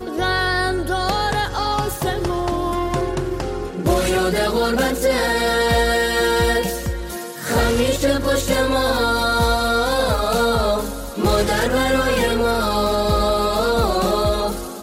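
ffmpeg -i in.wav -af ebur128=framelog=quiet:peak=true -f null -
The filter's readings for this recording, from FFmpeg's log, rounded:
Integrated loudness:
  I:         -19.2 LUFS
  Threshold: -29.2 LUFS
Loudness range:
  LRA:         3.0 LU
  Threshold: -39.1 LUFS
  LRA low:   -21.2 LUFS
  LRA high:  -18.2 LUFS
True peak:
  Peak:       -7.2 dBFS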